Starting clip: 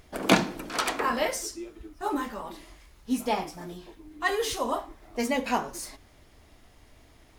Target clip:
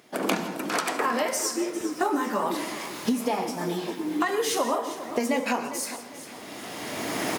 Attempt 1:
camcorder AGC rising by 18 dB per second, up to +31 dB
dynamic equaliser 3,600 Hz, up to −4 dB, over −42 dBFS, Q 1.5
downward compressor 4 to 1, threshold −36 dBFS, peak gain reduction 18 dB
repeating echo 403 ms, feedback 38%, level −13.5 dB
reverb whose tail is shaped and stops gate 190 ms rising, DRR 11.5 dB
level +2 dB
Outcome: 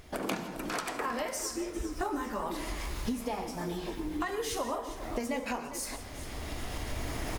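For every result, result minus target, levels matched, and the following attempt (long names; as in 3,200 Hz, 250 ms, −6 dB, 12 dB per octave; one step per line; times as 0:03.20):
downward compressor: peak gain reduction +8.5 dB; 125 Hz band +8.5 dB
camcorder AGC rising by 18 dB per second, up to +31 dB
dynamic equaliser 3,600 Hz, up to −4 dB, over −42 dBFS, Q 1.5
downward compressor 4 to 1, threshold −25 dBFS, peak gain reduction 9.5 dB
repeating echo 403 ms, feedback 38%, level −13.5 dB
reverb whose tail is shaped and stops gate 190 ms rising, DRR 11.5 dB
level +2 dB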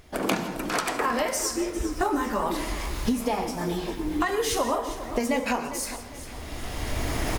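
125 Hz band +7.0 dB
camcorder AGC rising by 18 dB per second, up to +31 dB
dynamic equaliser 3,600 Hz, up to −4 dB, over −42 dBFS, Q 1.5
high-pass filter 170 Hz 24 dB per octave
downward compressor 4 to 1, threshold −25 dBFS, peak gain reduction 9.5 dB
repeating echo 403 ms, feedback 38%, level −13.5 dB
reverb whose tail is shaped and stops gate 190 ms rising, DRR 11.5 dB
level +2 dB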